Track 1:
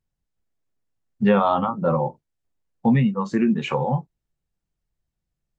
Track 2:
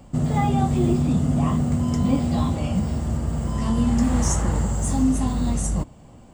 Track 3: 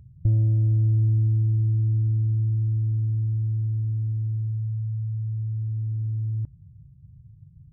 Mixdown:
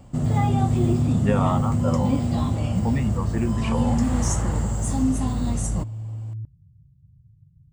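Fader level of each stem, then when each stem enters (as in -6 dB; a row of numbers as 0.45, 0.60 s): -6.0, -2.0, -5.0 dB; 0.00, 0.00, 0.00 s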